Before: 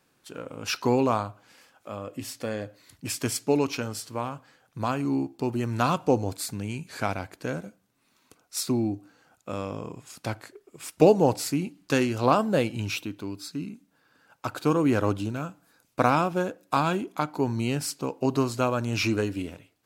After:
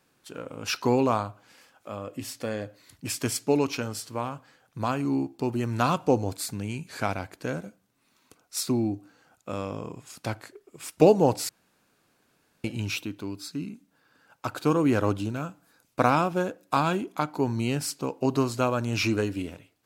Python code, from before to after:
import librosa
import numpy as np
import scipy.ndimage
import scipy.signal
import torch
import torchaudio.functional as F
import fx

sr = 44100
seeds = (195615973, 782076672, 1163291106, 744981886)

y = fx.edit(x, sr, fx.room_tone_fill(start_s=11.49, length_s=1.15), tone=tone)